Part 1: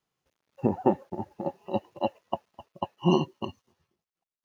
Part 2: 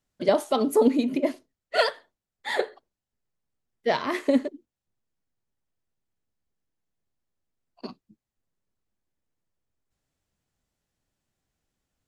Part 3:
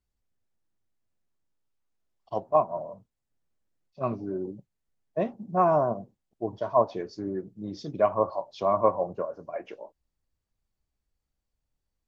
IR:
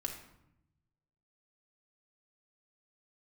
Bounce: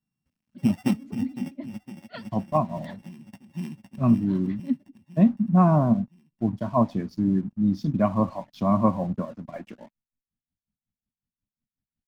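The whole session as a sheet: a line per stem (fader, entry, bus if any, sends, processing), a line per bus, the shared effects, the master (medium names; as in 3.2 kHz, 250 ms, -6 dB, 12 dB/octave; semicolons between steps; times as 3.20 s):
-9.5 dB, 0.00 s, no send, echo send -13.5 dB, sorted samples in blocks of 16 samples; auto duck -24 dB, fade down 1.10 s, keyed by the third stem
-15.0 dB, 0.35 s, no send, no echo send, low-pass 4.5 kHz 24 dB/octave; logarithmic tremolo 5.5 Hz, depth 20 dB
+0.5 dB, 0.00 s, no send, no echo send, crossover distortion -53.5 dBFS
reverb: none
echo: feedback delay 509 ms, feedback 56%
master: resonant low shelf 310 Hz +10.5 dB, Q 3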